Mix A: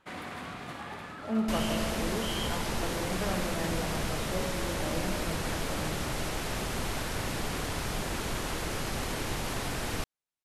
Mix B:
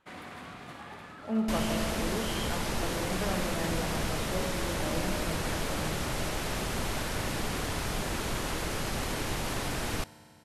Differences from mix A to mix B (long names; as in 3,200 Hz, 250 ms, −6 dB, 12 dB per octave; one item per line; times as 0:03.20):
first sound −4.0 dB
second sound: send on